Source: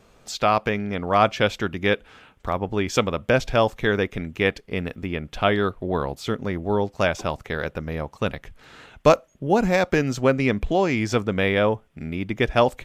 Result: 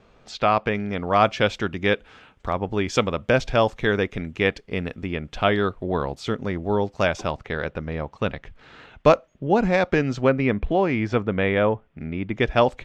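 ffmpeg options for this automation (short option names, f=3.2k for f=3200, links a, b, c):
-af "asetnsamples=n=441:p=0,asendcmd='0.75 lowpass f 7200;7.31 lowpass f 4200;10.29 lowpass f 2600;12.34 lowpass f 5000',lowpass=3.9k"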